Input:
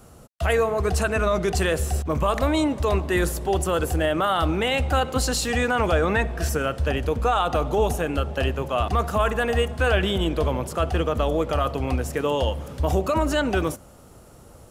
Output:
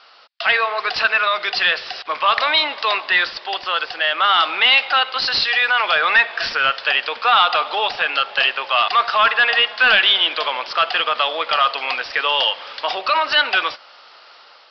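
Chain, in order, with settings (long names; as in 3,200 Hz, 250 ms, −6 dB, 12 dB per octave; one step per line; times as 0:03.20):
high-pass filter 970 Hz 12 dB per octave
spectral tilt +4.5 dB per octave
automatic gain control gain up to 3.5 dB
soft clipping −14 dBFS, distortion −14 dB
downsampling to 11,025 Hz
high-frequency loss of the air 62 metres
level +9 dB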